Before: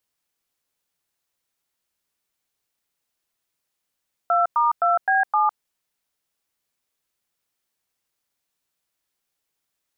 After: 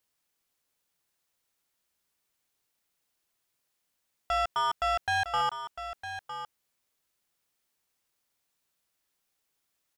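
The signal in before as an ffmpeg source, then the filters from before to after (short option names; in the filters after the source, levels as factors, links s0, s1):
-f lavfi -i "aevalsrc='0.119*clip(min(mod(t,0.259),0.157-mod(t,0.259))/0.002,0,1)*(eq(floor(t/0.259),0)*(sin(2*PI*697*mod(t,0.259))+sin(2*PI*1336*mod(t,0.259)))+eq(floor(t/0.259),1)*(sin(2*PI*941*mod(t,0.259))+sin(2*PI*1209*mod(t,0.259)))+eq(floor(t/0.259),2)*(sin(2*PI*697*mod(t,0.259))+sin(2*PI*1336*mod(t,0.259)))+eq(floor(t/0.259),3)*(sin(2*PI*770*mod(t,0.259))+sin(2*PI*1633*mod(t,0.259)))+eq(floor(t/0.259),4)*(sin(2*PI*852*mod(t,0.259))+sin(2*PI*1209*mod(t,0.259))))':d=1.295:s=44100"
-filter_complex "[0:a]asoftclip=type=tanh:threshold=0.0562,asplit=2[s0][s1];[s1]aecho=0:1:957:0.299[s2];[s0][s2]amix=inputs=2:normalize=0"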